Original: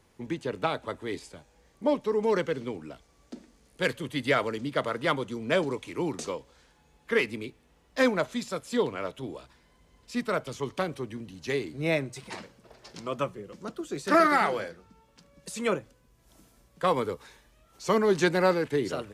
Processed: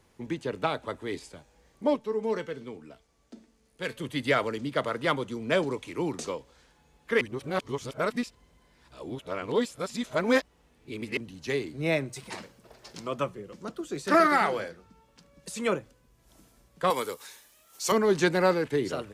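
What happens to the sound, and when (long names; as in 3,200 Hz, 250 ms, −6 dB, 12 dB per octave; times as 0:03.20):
0:01.96–0:03.97: tuned comb filter 220 Hz, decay 0.2 s
0:07.21–0:11.17: reverse
0:12.08–0:13.07: high-shelf EQ 10,000 Hz +8.5 dB
0:16.90–0:17.92: RIAA equalisation recording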